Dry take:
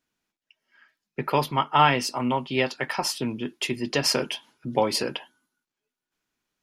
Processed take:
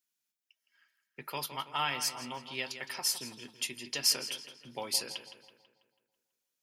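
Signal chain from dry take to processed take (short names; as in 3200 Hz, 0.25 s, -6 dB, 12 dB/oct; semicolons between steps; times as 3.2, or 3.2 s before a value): pre-emphasis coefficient 0.9; on a send: darkening echo 0.164 s, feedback 52%, low-pass 4700 Hz, level -10.5 dB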